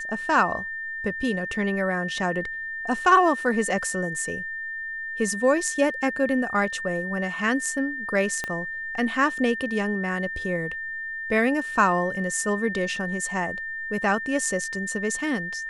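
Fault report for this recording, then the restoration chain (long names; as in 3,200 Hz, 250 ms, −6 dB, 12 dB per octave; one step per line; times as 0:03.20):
whistle 1,800 Hz −30 dBFS
0:08.44: click −14 dBFS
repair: click removal
notch filter 1,800 Hz, Q 30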